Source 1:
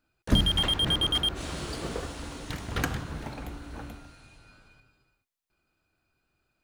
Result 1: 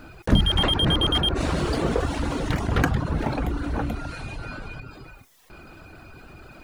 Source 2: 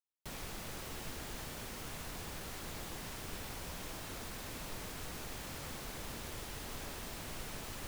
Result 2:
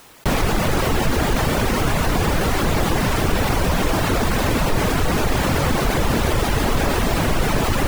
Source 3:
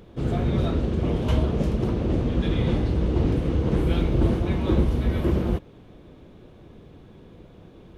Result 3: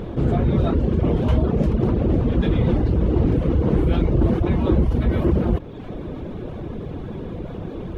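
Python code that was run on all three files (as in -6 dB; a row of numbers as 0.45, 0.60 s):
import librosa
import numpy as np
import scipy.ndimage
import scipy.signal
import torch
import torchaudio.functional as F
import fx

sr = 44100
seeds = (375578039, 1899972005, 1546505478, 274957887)

y = fx.dereverb_blind(x, sr, rt60_s=0.65)
y = fx.high_shelf(y, sr, hz=2600.0, db=-12.0)
y = fx.env_flatten(y, sr, amount_pct=50)
y = y * 10.0 ** (-6 / 20.0) / np.max(np.abs(y))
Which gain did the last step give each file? +4.0, +26.5, +2.5 dB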